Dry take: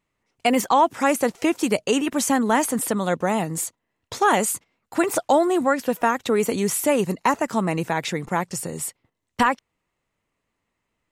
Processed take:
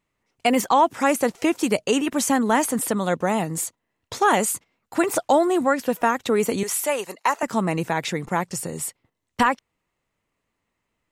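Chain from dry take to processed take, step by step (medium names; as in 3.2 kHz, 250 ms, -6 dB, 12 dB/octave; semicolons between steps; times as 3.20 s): 6.63–7.43 s: high-pass 600 Hz 12 dB/octave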